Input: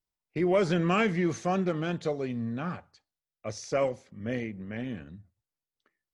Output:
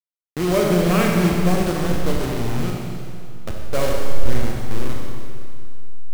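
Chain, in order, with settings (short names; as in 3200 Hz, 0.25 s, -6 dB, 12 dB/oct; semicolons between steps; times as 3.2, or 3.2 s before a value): level-crossing sampler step -25.5 dBFS; low shelf 82 Hz +8 dB; Schroeder reverb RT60 2.4 s, combs from 30 ms, DRR -1 dB; gain +4 dB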